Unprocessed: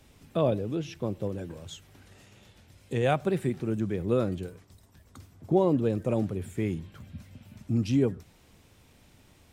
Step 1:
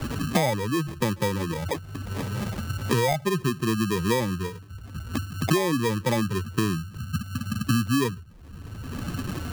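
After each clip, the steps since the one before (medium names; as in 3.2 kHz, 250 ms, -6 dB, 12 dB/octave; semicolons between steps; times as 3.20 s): spectral contrast enhancement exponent 2; sample-and-hold 31×; three bands compressed up and down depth 100%; trim +4 dB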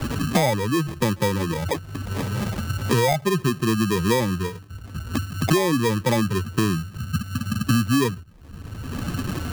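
waveshaping leveller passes 1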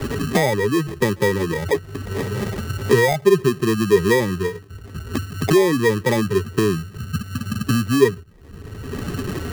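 small resonant body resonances 410/1900 Hz, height 14 dB, ringing for 60 ms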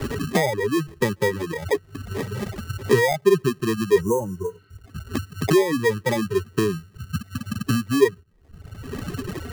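reverb removal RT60 1.7 s; spectral replace 4.04–4.74 s, 1.1–5.5 kHz after; trim -2 dB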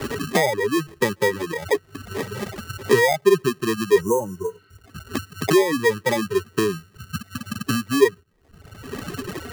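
bass shelf 180 Hz -11 dB; trim +3 dB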